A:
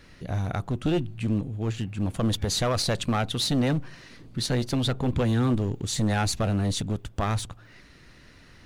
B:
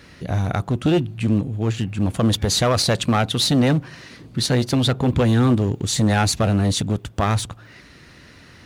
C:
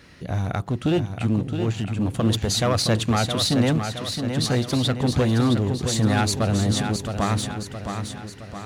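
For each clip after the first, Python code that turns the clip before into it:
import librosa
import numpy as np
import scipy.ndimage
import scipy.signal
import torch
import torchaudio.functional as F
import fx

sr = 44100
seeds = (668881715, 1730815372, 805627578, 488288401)

y1 = scipy.signal.sosfilt(scipy.signal.butter(2, 61.0, 'highpass', fs=sr, output='sos'), x)
y1 = F.gain(torch.from_numpy(y1), 7.0).numpy()
y2 = fx.echo_feedback(y1, sr, ms=667, feedback_pct=52, wet_db=-7)
y2 = F.gain(torch.from_numpy(y2), -3.5).numpy()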